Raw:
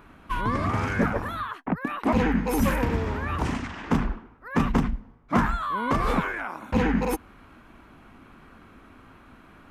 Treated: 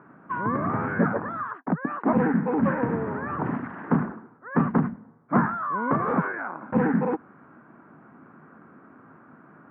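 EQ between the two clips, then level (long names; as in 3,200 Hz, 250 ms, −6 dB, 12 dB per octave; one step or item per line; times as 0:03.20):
elliptic band-pass filter 140–1,600 Hz, stop band 60 dB
low-shelf EQ 180 Hz +3.5 dB
+1.0 dB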